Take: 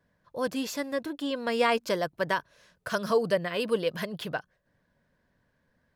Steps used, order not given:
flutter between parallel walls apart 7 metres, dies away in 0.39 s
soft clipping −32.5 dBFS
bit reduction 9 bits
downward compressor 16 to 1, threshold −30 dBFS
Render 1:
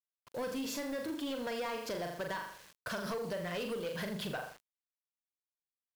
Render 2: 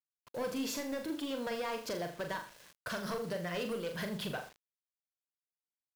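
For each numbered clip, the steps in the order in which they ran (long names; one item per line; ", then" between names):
flutter between parallel walls, then downward compressor, then soft clipping, then bit reduction
downward compressor, then soft clipping, then flutter between parallel walls, then bit reduction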